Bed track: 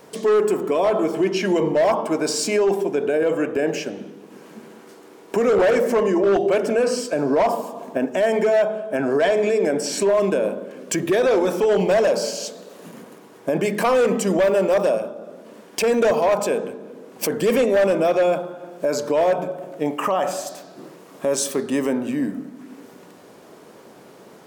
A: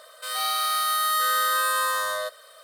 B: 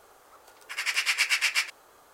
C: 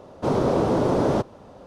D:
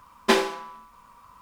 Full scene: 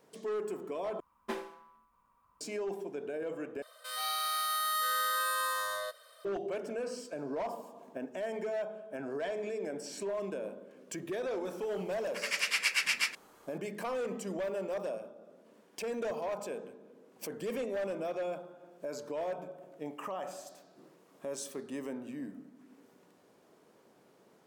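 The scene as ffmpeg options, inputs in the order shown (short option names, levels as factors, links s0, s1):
-filter_complex "[0:a]volume=0.126[s0];[4:a]equalizer=f=4700:t=o:w=2:g=-8.5[s1];[1:a]bandreject=f=7800:w=15[s2];[s0]asplit=3[s3][s4][s5];[s3]atrim=end=1.004[s6];[s1]atrim=end=1.41,asetpts=PTS-STARTPTS,volume=0.141[s7];[s4]atrim=start=2.406:end=3.624[s8];[s2]atrim=end=2.63,asetpts=PTS-STARTPTS,volume=0.376[s9];[s5]atrim=start=6.246[s10];[2:a]atrim=end=2.13,asetpts=PTS-STARTPTS,volume=0.562,afade=t=in:d=0.004:c=hsin,afade=t=out:st=2.126:d=0.004:c=hsin,adelay=11450[s11];[s6][s7]acrossfade=d=0.004:c1=hsin:c2=hsin[s12];[s12][s8]acrossfade=d=0.004:c1=hsin:c2=hsin[s13];[s13][s9]acrossfade=d=0.004:c1=hsin:c2=hsin[s14];[s14][s10]acrossfade=d=0.004:c1=hsin:c2=hsin[s15];[s15][s11]amix=inputs=2:normalize=0"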